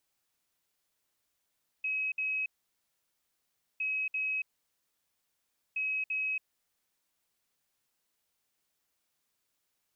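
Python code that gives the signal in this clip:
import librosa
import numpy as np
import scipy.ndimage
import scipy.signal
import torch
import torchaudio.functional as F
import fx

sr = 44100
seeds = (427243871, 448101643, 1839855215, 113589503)

y = fx.beep_pattern(sr, wave='sine', hz=2550.0, on_s=0.28, off_s=0.06, beeps=2, pause_s=1.34, groups=3, level_db=-29.5)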